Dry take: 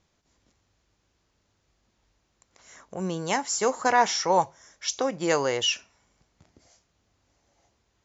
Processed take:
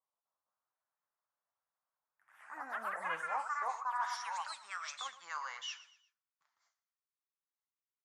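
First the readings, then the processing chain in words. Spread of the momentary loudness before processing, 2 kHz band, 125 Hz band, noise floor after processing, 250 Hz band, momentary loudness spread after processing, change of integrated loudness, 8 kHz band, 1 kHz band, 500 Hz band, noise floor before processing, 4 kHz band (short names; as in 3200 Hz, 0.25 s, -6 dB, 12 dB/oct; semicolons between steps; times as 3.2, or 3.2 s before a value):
11 LU, -9.0 dB, under -30 dB, under -85 dBFS, -31.5 dB, 8 LU, -14.0 dB, n/a, -11.0 dB, -25.0 dB, -73 dBFS, -16.5 dB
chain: EQ curve 110 Hz 0 dB, 380 Hz -22 dB, 1100 Hz +2 dB, 2500 Hz -27 dB, 3700 Hz -17 dB; gate with hold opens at -56 dBFS; high-pass sweep 530 Hz -> 2200 Hz, 3.53–4.18; high shelf 3600 Hz -8 dB; flange 1.4 Hz, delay 5.9 ms, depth 8 ms, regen +45%; on a send: feedback echo 0.119 s, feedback 39%, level -16.5 dB; on the sum: echoes that change speed 0.252 s, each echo +3 st, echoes 3; reverse; compressor 4:1, threshold -44 dBFS, peak gain reduction 16.5 dB; reverse; gain +7.5 dB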